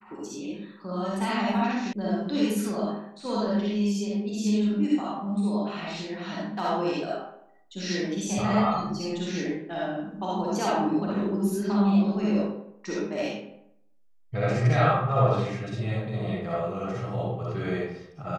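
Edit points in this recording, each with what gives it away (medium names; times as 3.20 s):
1.93 s: sound stops dead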